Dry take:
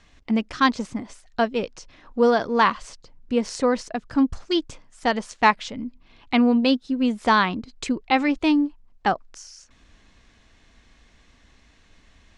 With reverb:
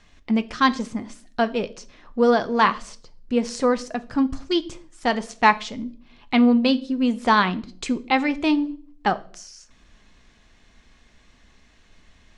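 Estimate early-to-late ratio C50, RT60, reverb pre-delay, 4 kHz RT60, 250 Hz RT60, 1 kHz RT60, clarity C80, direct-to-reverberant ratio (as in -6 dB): 19.5 dB, 0.50 s, 5 ms, 0.40 s, 0.70 s, 0.45 s, 24.0 dB, 10.5 dB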